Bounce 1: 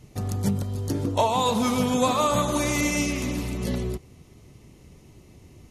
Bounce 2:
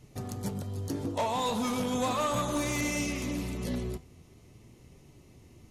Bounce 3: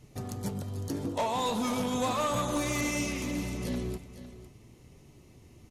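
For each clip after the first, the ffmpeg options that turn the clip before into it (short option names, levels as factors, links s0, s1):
-af "flanger=delay=6.8:depth=5.9:regen=78:speed=0.39:shape=triangular,asoftclip=type=tanh:threshold=0.0668,bandreject=f=50:t=h:w=6,bandreject=f=100:t=h:w=6,bandreject=f=150:t=h:w=6,bandreject=f=200:t=h:w=6"
-af "aecho=1:1:506:0.2"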